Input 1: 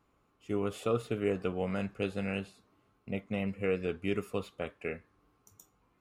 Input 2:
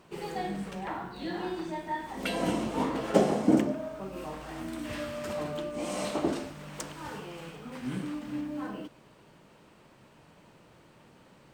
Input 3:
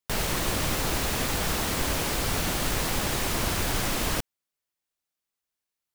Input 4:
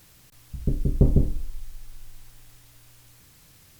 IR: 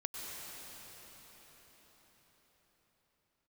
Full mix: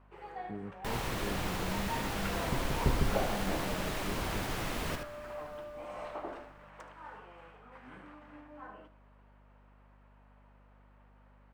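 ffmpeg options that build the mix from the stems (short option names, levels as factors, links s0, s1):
-filter_complex "[0:a]bandpass=f=160:t=q:w=1.8:csg=0,volume=0.841[s0];[1:a]acrossover=split=560 2100:gain=0.126 1 0.178[s1][s2][s3];[s1][s2][s3]amix=inputs=3:normalize=0,aeval=exprs='val(0)+0.00178*(sin(2*PI*50*n/s)+sin(2*PI*2*50*n/s)/2+sin(2*PI*3*50*n/s)/3+sin(2*PI*4*50*n/s)/4+sin(2*PI*5*50*n/s)/5)':c=same,volume=0.631,asplit=2[s4][s5];[s5]volume=0.168[s6];[2:a]adelay=750,volume=0.355,asplit=3[s7][s8][s9];[s8]volume=0.2[s10];[s9]volume=0.562[s11];[3:a]adelay=1850,volume=0.299[s12];[4:a]atrim=start_sample=2205[s13];[s10][s13]afir=irnorm=-1:irlink=0[s14];[s6][s11]amix=inputs=2:normalize=0,aecho=0:1:76:1[s15];[s0][s4][s7][s12][s14][s15]amix=inputs=6:normalize=0,bass=f=250:g=-1,treble=f=4000:g=-8"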